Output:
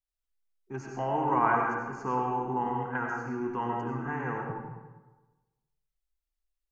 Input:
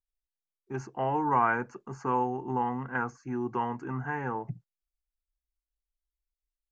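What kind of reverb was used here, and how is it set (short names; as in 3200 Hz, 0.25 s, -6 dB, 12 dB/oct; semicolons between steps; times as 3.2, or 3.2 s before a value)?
digital reverb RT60 1.2 s, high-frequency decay 0.7×, pre-delay 50 ms, DRR -0.5 dB; gain -2.5 dB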